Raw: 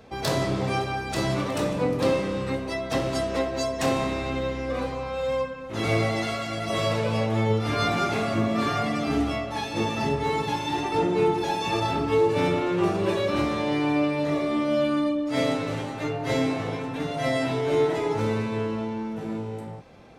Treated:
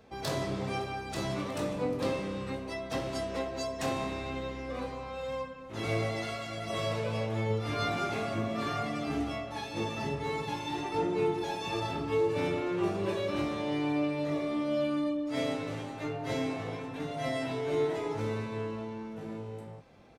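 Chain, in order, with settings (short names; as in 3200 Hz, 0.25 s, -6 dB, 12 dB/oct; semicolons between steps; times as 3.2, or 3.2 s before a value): doubler 20 ms -11.5 dB; gain -8 dB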